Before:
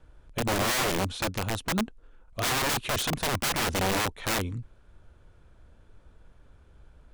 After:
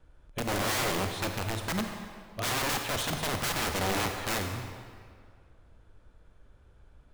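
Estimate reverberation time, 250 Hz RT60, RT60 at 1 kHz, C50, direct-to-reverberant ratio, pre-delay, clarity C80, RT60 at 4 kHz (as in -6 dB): 2.1 s, 1.9 s, 2.1 s, 4.5 dB, 4.0 dB, 34 ms, 6.0 dB, 1.5 s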